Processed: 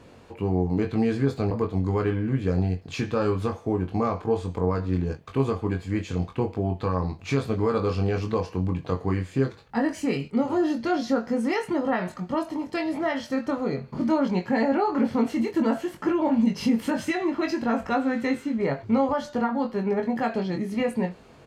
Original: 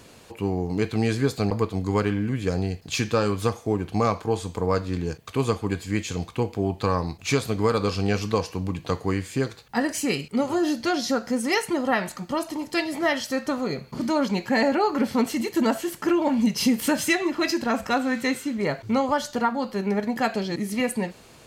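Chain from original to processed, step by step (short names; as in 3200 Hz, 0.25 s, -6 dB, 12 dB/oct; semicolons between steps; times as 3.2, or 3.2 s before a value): limiter -14.5 dBFS, peak gain reduction 4 dB; LPF 1400 Hz 6 dB/oct; doubler 22 ms -5 dB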